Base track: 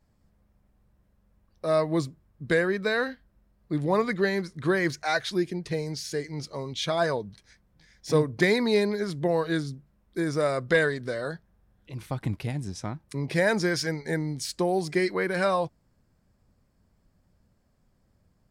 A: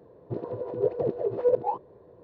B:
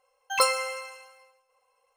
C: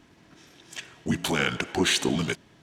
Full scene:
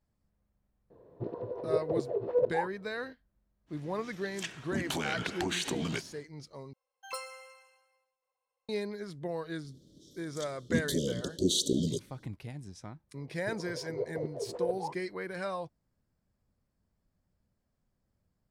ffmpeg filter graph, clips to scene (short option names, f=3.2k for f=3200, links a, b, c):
-filter_complex "[1:a]asplit=2[a][b];[3:a]asplit=2[c][d];[0:a]volume=-11.5dB[e];[c]acompressor=threshold=-29dB:ratio=6:attack=3.2:release=140:knee=1:detection=peak[f];[d]asuperstop=centerf=1400:order=20:qfactor=0.51[g];[e]asplit=2[h][i];[h]atrim=end=6.734[j];[2:a]atrim=end=1.96,asetpts=PTS-STARTPTS,volume=-17.5dB[k];[i]atrim=start=8.686[l];[a]atrim=end=2.23,asetpts=PTS-STARTPTS,volume=-4.5dB,afade=t=in:d=0.004:c=hsin,afade=t=out:st=2.226:d=0.004:c=hsin,adelay=900[m];[f]atrim=end=2.62,asetpts=PTS-STARTPTS,volume=-0.5dB,afade=t=in:d=0.1,afade=t=out:st=2.52:d=0.1,adelay=3660[n];[g]atrim=end=2.62,asetpts=PTS-STARTPTS,volume=-3dB,afade=t=in:d=0.004:c=hsin,afade=t=out:st=2.616:d=0.004:c=hsin,adelay=9640[o];[b]atrim=end=2.23,asetpts=PTS-STARTPTS,volume=-9.5dB,afade=t=in:d=0.004:c=hsin,afade=t=out:st=2.226:d=0.004:c=hsin,adelay=580356S[p];[j][k]acrossfade=d=0.004:c1=hsin:c2=hsin[q];[q][l]acrossfade=d=0.004:c1=hsin:c2=hsin[r];[r][m][n][o][p]amix=inputs=5:normalize=0"